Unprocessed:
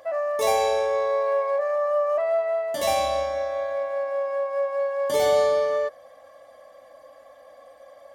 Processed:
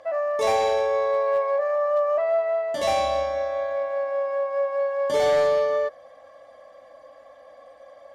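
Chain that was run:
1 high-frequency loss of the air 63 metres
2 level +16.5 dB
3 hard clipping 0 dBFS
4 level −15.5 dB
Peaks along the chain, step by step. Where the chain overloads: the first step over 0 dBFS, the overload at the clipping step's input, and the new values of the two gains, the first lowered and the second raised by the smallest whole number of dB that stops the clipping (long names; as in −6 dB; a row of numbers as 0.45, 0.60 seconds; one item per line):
−10.5, +6.0, 0.0, −15.5 dBFS
step 2, 6.0 dB
step 2 +10.5 dB, step 4 −9.5 dB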